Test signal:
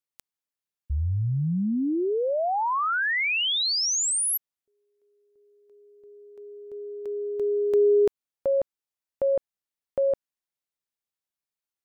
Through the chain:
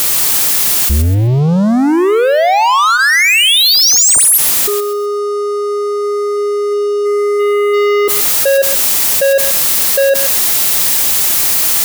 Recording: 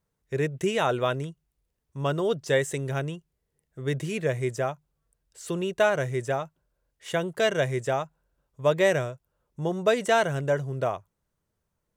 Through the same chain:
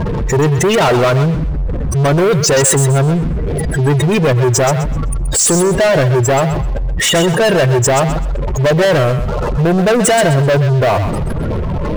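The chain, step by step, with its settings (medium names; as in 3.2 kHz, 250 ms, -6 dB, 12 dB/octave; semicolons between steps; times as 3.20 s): jump at every zero crossing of -28.5 dBFS; spectral gate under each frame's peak -15 dB strong; treble shelf 5.1 kHz +10.5 dB; band-stop 1.5 kHz, Q 18; waveshaping leveller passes 5; thinning echo 128 ms, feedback 28%, high-pass 660 Hz, level -8 dB; trim +1.5 dB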